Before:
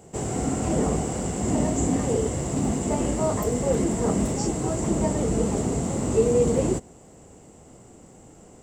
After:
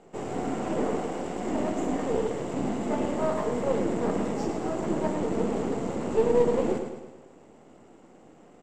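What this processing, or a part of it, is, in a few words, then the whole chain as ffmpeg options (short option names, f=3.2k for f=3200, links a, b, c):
crystal radio: -filter_complex "[0:a]asettb=1/sr,asplit=3[a][b][c];[a]atrim=end=0.794[d];[b]atrim=start=0.79:end=2.12,asetpts=PTS-STARTPTS,afade=t=in:d=0.004:c=qsin,afade=t=out:st=1.326:d=0.004:c=qsin,highpass=180[e];[c]atrim=start=2.116[f];[d][e]acrossfade=d=0.004:c1=hsin:c2=qsin[g];[g][f]acrossfade=d=0.004:c1=qsin:c2=hsin,highpass=220,lowpass=3.4k,aecho=1:1:108|216|324|432|540|648:0.447|0.237|0.125|0.0665|0.0352|0.0187,aeval=exprs='if(lt(val(0),0),0.447*val(0),val(0))':c=same"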